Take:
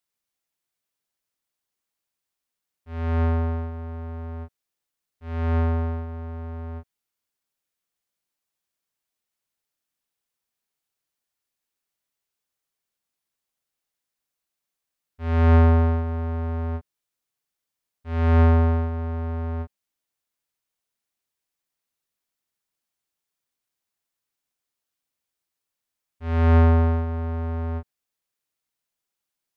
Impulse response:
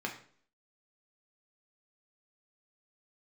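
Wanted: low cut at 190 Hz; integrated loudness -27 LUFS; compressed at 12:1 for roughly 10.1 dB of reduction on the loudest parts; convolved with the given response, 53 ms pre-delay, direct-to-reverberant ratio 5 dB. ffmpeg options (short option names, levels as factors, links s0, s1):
-filter_complex "[0:a]highpass=190,acompressor=threshold=0.0501:ratio=12,asplit=2[s0][s1];[1:a]atrim=start_sample=2205,adelay=53[s2];[s1][s2]afir=irnorm=-1:irlink=0,volume=0.376[s3];[s0][s3]amix=inputs=2:normalize=0,volume=1.78"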